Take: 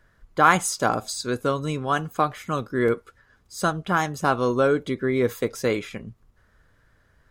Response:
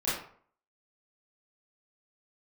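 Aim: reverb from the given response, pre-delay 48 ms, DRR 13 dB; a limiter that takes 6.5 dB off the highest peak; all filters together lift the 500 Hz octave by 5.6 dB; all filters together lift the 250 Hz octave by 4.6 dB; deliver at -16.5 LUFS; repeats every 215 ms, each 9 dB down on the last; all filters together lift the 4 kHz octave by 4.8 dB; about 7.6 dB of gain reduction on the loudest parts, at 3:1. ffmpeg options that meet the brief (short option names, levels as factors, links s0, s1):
-filter_complex "[0:a]equalizer=f=250:t=o:g=4,equalizer=f=500:t=o:g=5.5,equalizer=f=4000:t=o:g=6,acompressor=threshold=0.0891:ratio=3,alimiter=limit=0.178:level=0:latency=1,aecho=1:1:215|430|645|860:0.355|0.124|0.0435|0.0152,asplit=2[s0][s1];[1:a]atrim=start_sample=2205,adelay=48[s2];[s1][s2]afir=irnorm=-1:irlink=0,volume=0.0841[s3];[s0][s3]amix=inputs=2:normalize=0,volume=3.16"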